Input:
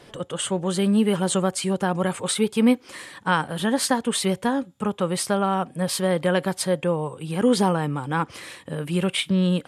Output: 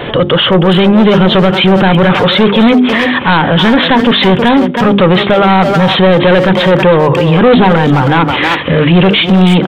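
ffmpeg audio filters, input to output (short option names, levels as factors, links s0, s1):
-filter_complex "[0:a]bandreject=f=50:t=h:w=6,bandreject=f=100:t=h:w=6,bandreject=f=150:t=h:w=6,bandreject=f=200:t=h:w=6,bandreject=f=250:t=h:w=6,bandreject=f=300:t=h:w=6,bandreject=f=350:t=h:w=6,bandreject=f=400:t=h:w=6,aresample=8000,asoftclip=type=tanh:threshold=0.0562,aresample=44100,asplit=2[s0][s1];[s1]adelay=320,highpass=300,lowpass=3400,asoftclip=type=hard:threshold=0.0335,volume=0.447[s2];[s0][s2]amix=inputs=2:normalize=0,alimiter=level_in=33.5:limit=0.891:release=50:level=0:latency=1,volume=0.891"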